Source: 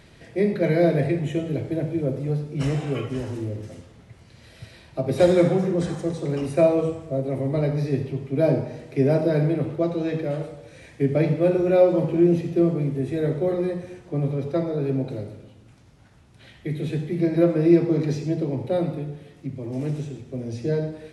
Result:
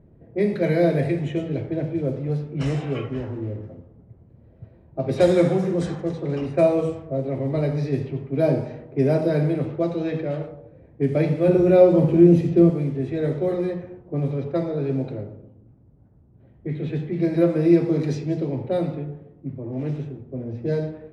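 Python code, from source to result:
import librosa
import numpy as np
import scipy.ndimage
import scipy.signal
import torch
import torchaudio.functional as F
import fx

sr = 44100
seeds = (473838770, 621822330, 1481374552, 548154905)

y = fx.env_lowpass(x, sr, base_hz=420.0, full_db=-18.0)
y = fx.low_shelf(y, sr, hz=400.0, db=7.5, at=(11.48, 12.7))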